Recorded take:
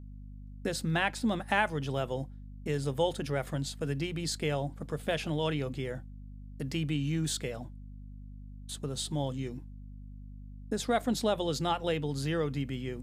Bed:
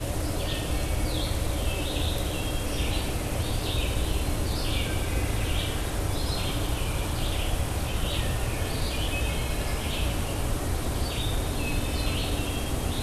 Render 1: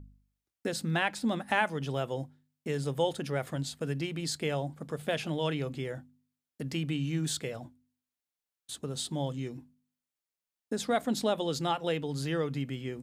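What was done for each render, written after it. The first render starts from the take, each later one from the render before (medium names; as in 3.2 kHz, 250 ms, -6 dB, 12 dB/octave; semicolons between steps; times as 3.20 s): de-hum 50 Hz, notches 5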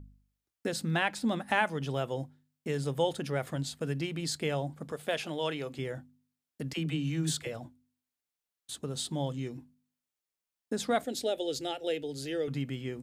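4.92–5.79 s: tone controls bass -10 dB, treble +1 dB; 6.73–7.47 s: phase dispersion lows, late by 48 ms, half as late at 390 Hz; 11.04–12.48 s: static phaser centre 440 Hz, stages 4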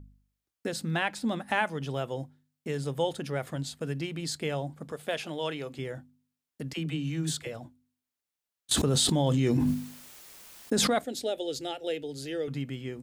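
8.71–10.99 s: level flattener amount 100%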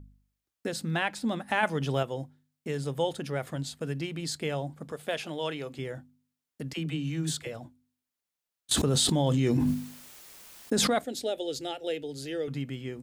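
1.63–2.03 s: gain +4.5 dB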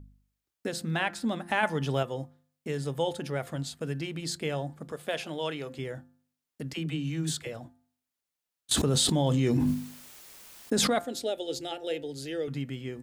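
de-hum 173.6 Hz, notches 11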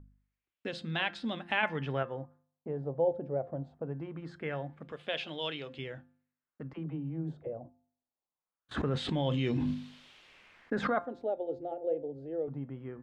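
LFO low-pass sine 0.23 Hz 610–3500 Hz; feedback comb 530 Hz, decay 0.23 s, harmonics all, mix 50%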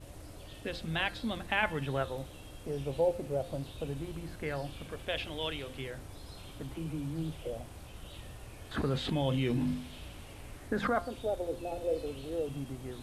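add bed -19.5 dB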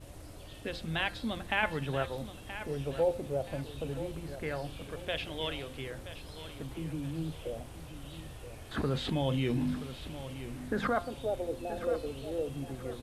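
feedback delay 976 ms, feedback 35%, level -12.5 dB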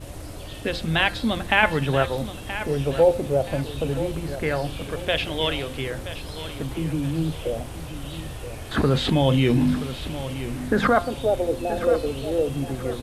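trim +11.5 dB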